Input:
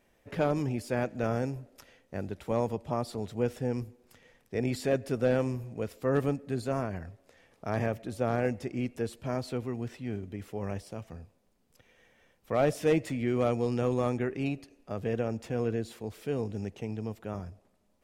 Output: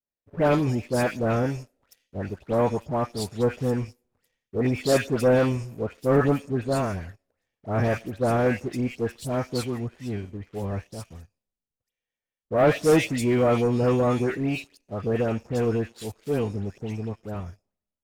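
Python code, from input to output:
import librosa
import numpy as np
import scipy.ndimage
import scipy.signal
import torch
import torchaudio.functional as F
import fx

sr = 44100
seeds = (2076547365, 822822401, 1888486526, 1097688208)

y = fx.dispersion(x, sr, late='highs', ms=135.0, hz=1800.0)
y = fx.leveller(y, sr, passes=2)
y = fx.band_widen(y, sr, depth_pct=70)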